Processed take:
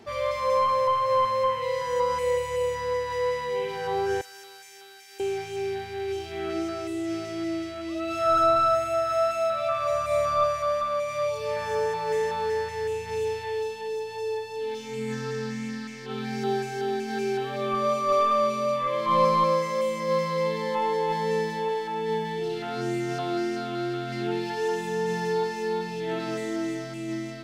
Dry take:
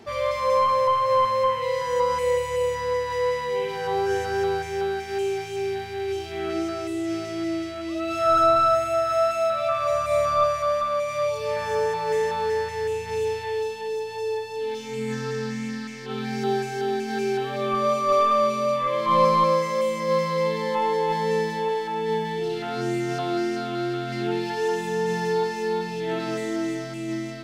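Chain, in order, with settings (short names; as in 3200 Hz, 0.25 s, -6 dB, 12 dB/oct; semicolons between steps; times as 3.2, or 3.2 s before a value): 4.21–5.2 differentiator; gain -2.5 dB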